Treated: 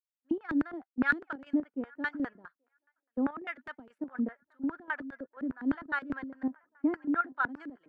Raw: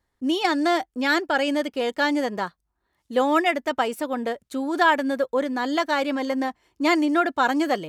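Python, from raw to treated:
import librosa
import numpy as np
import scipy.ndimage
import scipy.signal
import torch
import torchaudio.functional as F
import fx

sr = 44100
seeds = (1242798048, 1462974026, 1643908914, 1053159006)

p1 = fx.high_shelf(x, sr, hz=3100.0, db=-10.0)
p2 = fx.rider(p1, sr, range_db=4, speed_s=0.5)
p3 = fx.filter_lfo_bandpass(p2, sr, shape='square', hz=4.9, low_hz=260.0, high_hz=1500.0, q=4.7)
p4 = fx.chopper(p3, sr, hz=4.1, depth_pct=65, duty_pct=55)
p5 = p4 + fx.echo_wet_bandpass(p4, sr, ms=830, feedback_pct=50, hz=1200.0, wet_db=-20, dry=0)
y = fx.band_widen(p5, sr, depth_pct=100)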